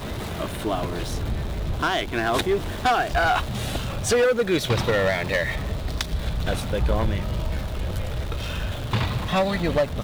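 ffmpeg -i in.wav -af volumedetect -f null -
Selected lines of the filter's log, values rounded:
mean_volume: -24.0 dB
max_volume: -15.8 dB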